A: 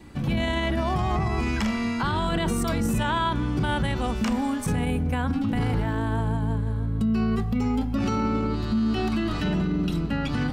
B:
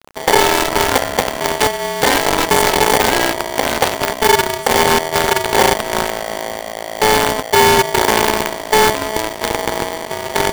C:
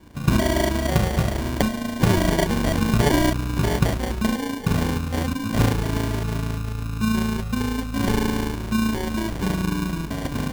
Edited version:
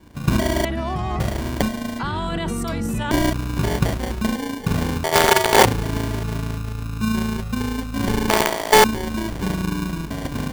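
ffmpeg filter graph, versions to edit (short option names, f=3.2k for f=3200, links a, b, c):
-filter_complex "[0:a]asplit=2[a][b];[1:a]asplit=2[c][d];[2:a]asplit=5[e][f][g][h][i];[e]atrim=end=0.652[j];[a]atrim=start=0.648:end=1.202[k];[f]atrim=start=1.198:end=1.992[l];[b]atrim=start=1.988:end=3.112[m];[g]atrim=start=3.108:end=5.042[n];[c]atrim=start=5.038:end=5.652[o];[h]atrim=start=5.648:end=8.302[p];[d]atrim=start=8.298:end=8.842[q];[i]atrim=start=8.838[r];[j][k]acrossfade=d=0.004:c1=hsin:c2=hsin[s];[s][l]acrossfade=d=0.004:c1=hsin:c2=hsin[t];[t][m]acrossfade=d=0.004:c1=hsin:c2=hsin[u];[u][n]acrossfade=d=0.004:c1=hsin:c2=hsin[v];[v][o]acrossfade=d=0.004:c1=hsin:c2=hsin[w];[w][p]acrossfade=d=0.004:c1=hsin:c2=hsin[x];[x][q]acrossfade=d=0.004:c1=hsin:c2=hsin[y];[y][r]acrossfade=d=0.004:c1=hsin:c2=hsin"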